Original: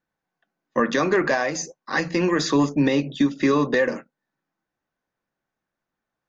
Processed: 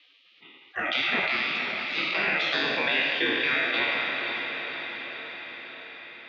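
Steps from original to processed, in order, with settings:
peak hold with a decay on every bin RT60 1.43 s
notch filter 1,300 Hz, Q 25
gate on every frequency bin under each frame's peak −20 dB weak
parametric band 1,000 Hz −11.5 dB 0.94 octaves
on a send: feedback delay with all-pass diffusion 481 ms, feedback 41%, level −10 dB
on the sum: single-sideband voice off tune −77 Hz 300–3,500 Hz
envelope flattener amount 50%
level +6.5 dB

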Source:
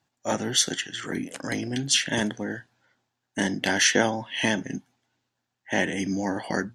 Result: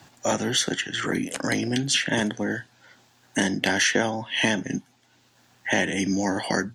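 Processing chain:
multiband upward and downward compressor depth 70%
level +2 dB

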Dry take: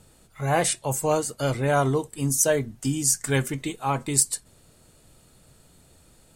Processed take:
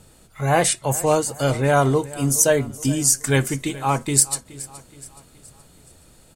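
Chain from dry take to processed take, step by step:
repeating echo 422 ms, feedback 48%, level −18.5 dB
level +4.5 dB

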